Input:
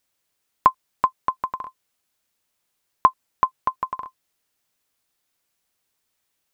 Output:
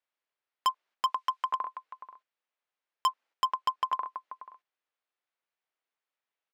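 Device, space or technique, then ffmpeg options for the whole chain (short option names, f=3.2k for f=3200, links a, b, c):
walkie-talkie: -filter_complex "[0:a]asettb=1/sr,asplit=3[a][b][c];[a]atrim=end=1.064[d];[b]atrim=start=1.06:end=1.52,asetpts=PTS-STARTPTS,afade=t=in:d=0.004:c=qsin,afade=t=out:st=0.456:d=0.004:c=qsin,tiltshelf=f=1.4k:g=-9[e];[c]atrim=start=1.516[f];[d][e]acrossfade=d=0.004:c1=hsin:c2=qsin[g];[g][f]acrossfade=d=0.004:c1=qsin:c2=hsin,highpass=470,lowpass=2.7k,aecho=1:1:485:0.158,asoftclip=type=hard:threshold=-21dB,agate=range=-9dB:threshold=-58dB:ratio=16:detection=peak"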